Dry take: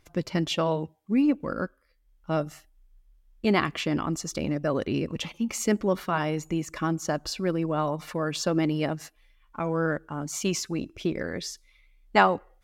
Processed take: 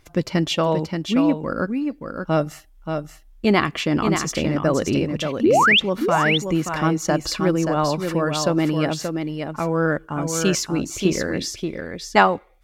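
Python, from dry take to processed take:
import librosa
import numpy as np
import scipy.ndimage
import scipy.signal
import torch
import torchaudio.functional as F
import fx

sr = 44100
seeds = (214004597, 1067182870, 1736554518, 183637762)

y = fx.spec_paint(x, sr, seeds[0], shape='rise', start_s=5.43, length_s=0.37, low_hz=270.0, high_hz=3800.0, level_db=-14.0)
y = fx.rider(y, sr, range_db=4, speed_s=0.5)
y = y + 10.0 ** (-6.0 / 20.0) * np.pad(y, (int(579 * sr / 1000.0), 0))[:len(y)]
y = y * librosa.db_to_amplitude(3.0)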